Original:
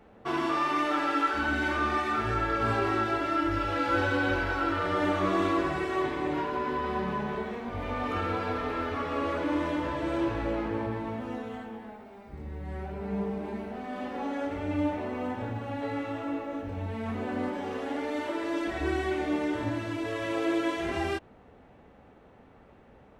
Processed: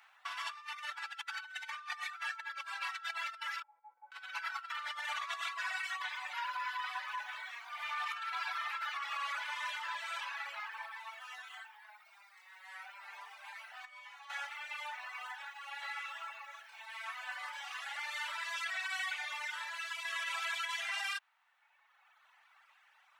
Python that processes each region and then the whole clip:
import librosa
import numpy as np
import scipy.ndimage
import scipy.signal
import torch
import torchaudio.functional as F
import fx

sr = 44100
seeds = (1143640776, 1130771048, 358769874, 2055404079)

y = fx.chain(x, sr, fx.formant_cascade(vowel='u'),
    fx.over_compress(threshold_db=-36.0, ratio=-0.5), at=(3.62, 4.12))
y = fx.chain(y, sr, fx.comb_fb(f0_hz=59.0, decay_s=0.68, harmonics='all', damping=0.0, mix_pct=90),
    fx.env_flatten(amount_pct=70), at=(13.85, 14.3))
y = scipy.signal.sosfilt(scipy.signal.bessel(8, 1700.0, 'highpass', norm='mag', fs=sr, output='sos'), y)
y = fx.dereverb_blind(y, sr, rt60_s=1.6)
y = fx.over_compress(y, sr, threshold_db=-43.0, ratio=-0.5)
y = F.gain(torch.from_numpy(y), 4.0).numpy()